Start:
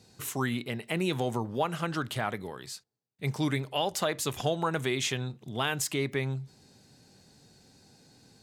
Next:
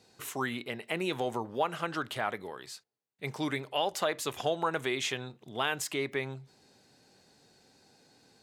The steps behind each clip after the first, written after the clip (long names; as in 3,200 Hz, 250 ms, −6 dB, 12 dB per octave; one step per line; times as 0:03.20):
bass and treble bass −11 dB, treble −5 dB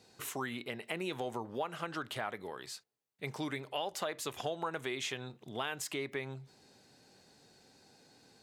downward compressor 2 to 1, threshold −38 dBFS, peak gain reduction 8.5 dB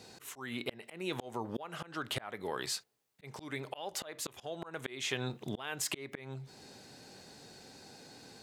volume swells 444 ms
level +9 dB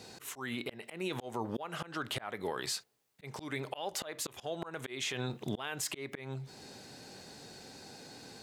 brickwall limiter −28.5 dBFS, peak gain reduction 10 dB
level +3 dB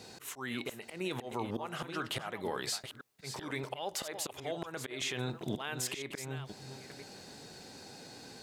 delay that plays each chunk backwards 502 ms, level −9 dB